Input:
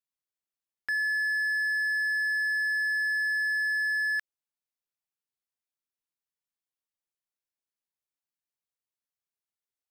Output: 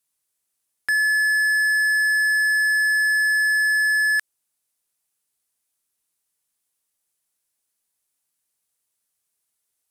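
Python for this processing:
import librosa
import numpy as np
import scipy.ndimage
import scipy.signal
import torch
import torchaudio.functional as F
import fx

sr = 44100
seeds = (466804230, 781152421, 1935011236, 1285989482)

p1 = fx.peak_eq(x, sr, hz=10000.0, db=12.5, octaves=1.1)
p2 = np.clip(p1, -10.0 ** (-39.5 / 20.0), 10.0 ** (-39.5 / 20.0))
p3 = p1 + (p2 * librosa.db_to_amplitude(-11.0))
y = p3 * librosa.db_to_amplitude(7.5)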